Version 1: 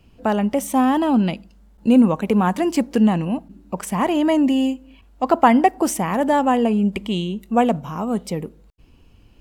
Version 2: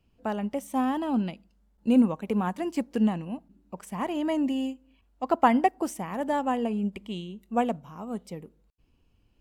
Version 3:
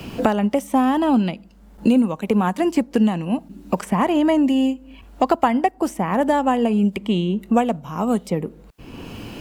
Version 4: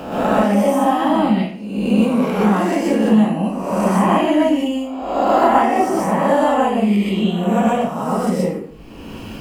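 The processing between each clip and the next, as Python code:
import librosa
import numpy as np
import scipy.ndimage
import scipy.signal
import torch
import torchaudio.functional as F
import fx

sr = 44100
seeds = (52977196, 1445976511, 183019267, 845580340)

y1 = fx.upward_expand(x, sr, threshold_db=-27.0, expansion=1.5)
y1 = y1 * librosa.db_to_amplitude(-6.0)
y2 = fx.band_squash(y1, sr, depth_pct=100)
y2 = y2 * librosa.db_to_amplitude(8.5)
y3 = fx.spec_swells(y2, sr, rise_s=0.97)
y3 = fx.rev_plate(y3, sr, seeds[0], rt60_s=0.51, hf_ratio=0.8, predelay_ms=110, drr_db=-6.5)
y3 = y3 * librosa.db_to_amplitude(-6.5)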